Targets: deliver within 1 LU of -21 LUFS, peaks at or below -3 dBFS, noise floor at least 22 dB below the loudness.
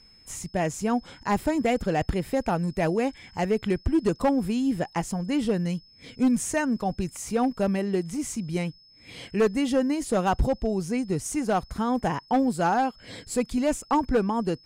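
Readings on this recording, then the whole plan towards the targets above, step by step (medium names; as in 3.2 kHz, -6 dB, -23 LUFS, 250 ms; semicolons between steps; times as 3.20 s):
clipped samples 0.8%; clipping level -16.0 dBFS; steady tone 5.2 kHz; tone level -53 dBFS; loudness -26.5 LUFS; peak level -16.0 dBFS; loudness target -21.0 LUFS
-> clip repair -16 dBFS; band-stop 5.2 kHz, Q 30; trim +5.5 dB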